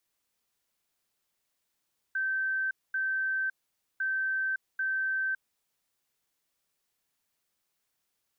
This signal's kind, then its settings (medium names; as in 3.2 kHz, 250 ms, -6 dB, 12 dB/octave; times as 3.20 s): beep pattern sine 1.55 kHz, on 0.56 s, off 0.23 s, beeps 2, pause 0.50 s, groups 2, -27 dBFS